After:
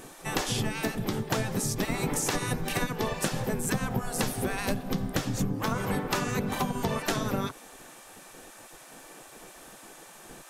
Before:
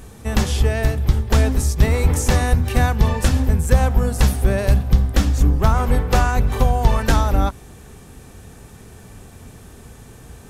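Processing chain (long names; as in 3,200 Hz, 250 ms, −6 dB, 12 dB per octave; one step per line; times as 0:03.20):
gate on every frequency bin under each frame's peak −15 dB weak
low-shelf EQ 190 Hz +11 dB
downward compressor, threshold −25 dBFS, peak gain reduction 9.5 dB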